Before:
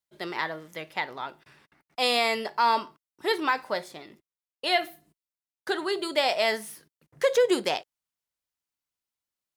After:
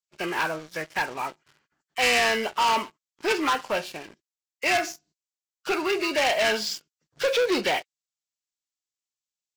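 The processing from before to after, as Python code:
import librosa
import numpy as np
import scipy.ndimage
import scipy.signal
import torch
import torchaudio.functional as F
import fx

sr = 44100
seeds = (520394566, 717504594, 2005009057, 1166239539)

y = fx.freq_compress(x, sr, knee_hz=1100.0, ratio=1.5)
y = fx.leveller(y, sr, passes=3)
y = fx.high_shelf(y, sr, hz=3200.0, db=11.0)
y = y * 10.0 ** (-6.5 / 20.0)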